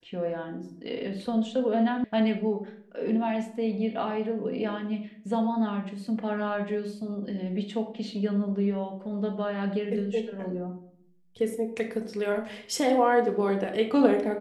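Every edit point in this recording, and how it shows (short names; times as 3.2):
2.04 sound cut off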